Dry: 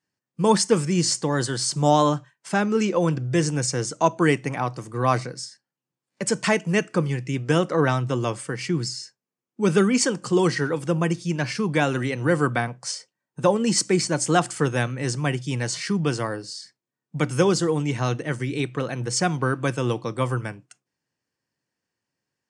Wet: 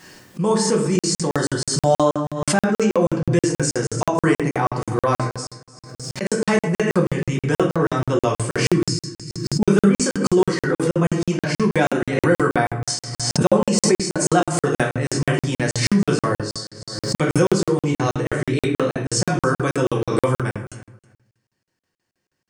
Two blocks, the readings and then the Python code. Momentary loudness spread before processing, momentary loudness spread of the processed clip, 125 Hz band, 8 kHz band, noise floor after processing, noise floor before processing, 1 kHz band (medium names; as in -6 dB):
9 LU, 8 LU, +3.0 dB, +2.5 dB, under -85 dBFS, under -85 dBFS, +2.0 dB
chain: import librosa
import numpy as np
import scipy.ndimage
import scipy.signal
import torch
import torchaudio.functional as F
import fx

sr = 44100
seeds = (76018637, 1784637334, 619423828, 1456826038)

y = fx.dynamic_eq(x, sr, hz=3200.0, q=0.95, threshold_db=-39.0, ratio=4.0, max_db=-5)
y = fx.rider(y, sr, range_db=4, speed_s=0.5)
y = fx.peak_eq(y, sr, hz=130.0, db=-3.0, octaves=0.31)
y = fx.echo_feedback(y, sr, ms=302, feedback_pct=16, wet_db=-19)
y = fx.room_shoebox(y, sr, seeds[0], volume_m3=84.0, walls='mixed', distance_m=0.98)
y = fx.buffer_crackle(y, sr, first_s=0.99, period_s=0.16, block=2048, kind='zero')
y = fx.pre_swell(y, sr, db_per_s=46.0)